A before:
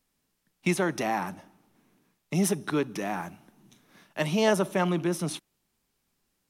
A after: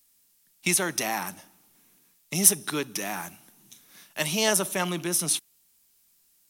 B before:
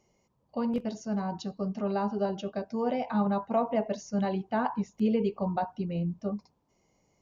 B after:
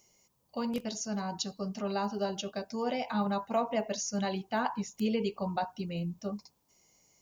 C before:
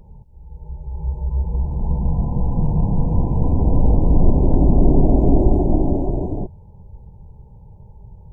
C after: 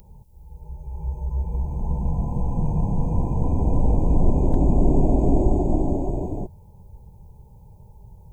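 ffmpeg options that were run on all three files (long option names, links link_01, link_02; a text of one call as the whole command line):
ffmpeg -i in.wav -af "crystalizer=i=7:c=0,volume=-4.5dB" out.wav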